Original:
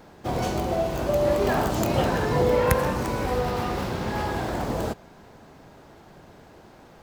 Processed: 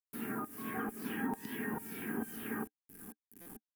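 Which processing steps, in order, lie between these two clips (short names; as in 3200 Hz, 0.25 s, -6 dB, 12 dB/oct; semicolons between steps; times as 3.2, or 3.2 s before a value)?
median filter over 15 samples; LFO band-pass saw down 1.2 Hz 450–5600 Hz; air absorption 280 m; resonator 330 Hz, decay 0.21 s, harmonics all, mix 50%; bit-crush 10-bit; wide varispeed 1.87×; EQ curve 170 Hz 0 dB, 300 Hz +5 dB, 590 Hz -23 dB, 2500 Hz -17 dB, 4000 Hz -24 dB, 6700 Hz -14 dB, 11000 Hz +7 dB; compressor 5:1, threshold -56 dBFS, peak gain reduction 10.5 dB; small resonant body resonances 220/430/780/1600 Hz, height 13 dB, ringing for 45 ms; stuck buffer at 3.41, samples 256; gain +15.5 dB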